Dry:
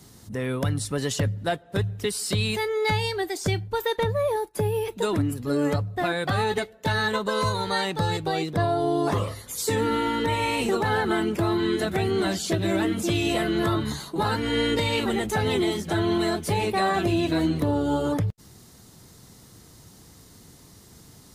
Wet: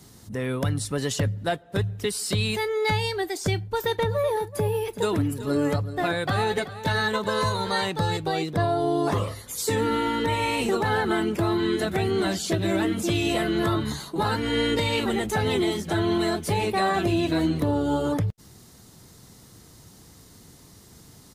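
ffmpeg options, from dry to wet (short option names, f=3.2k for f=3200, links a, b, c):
-filter_complex "[0:a]asplit=3[a][b][c];[a]afade=t=out:st=3.75:d=0.02[d];[b]aecho=1:1:379:0.2,afade=t=in:st=3.75:d=0.02,afade=t=out:st=7.88:d=0.02[e];[c]afade=t=in:st=7.88:d=0.02[f];[d][e][f]amix=inputs=3:normalize=0"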